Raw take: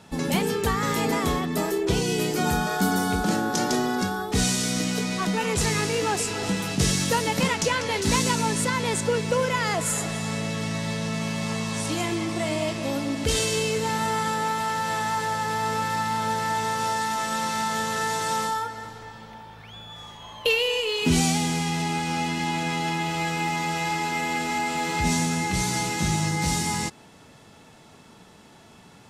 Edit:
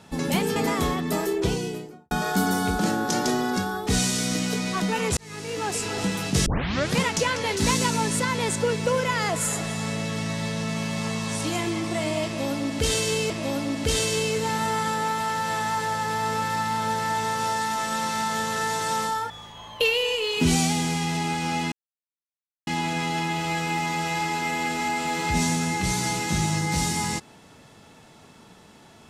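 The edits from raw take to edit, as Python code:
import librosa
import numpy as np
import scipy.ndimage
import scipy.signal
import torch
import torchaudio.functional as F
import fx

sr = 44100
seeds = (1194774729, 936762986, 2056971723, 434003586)

y = fx.studio_fade_out(x, sr, start_s=1.78, length_s=0.78)
y = fx.edit(y, sr, fx.cut(start_s=0.56, length_s=0.45),
    fx.fade_in_span(start_s=5.62, length_s=0.71),
    fx.tape_start(start_s=6.91, length_s=0.54),
    fx.repeat(start_s=12.7, length_s=1.05, count=2),
    fx.cut(start_s=18.7, length_s=1.25),
    fx.insert_silence(at_s=22.37, length_s=0.95), tone=tone)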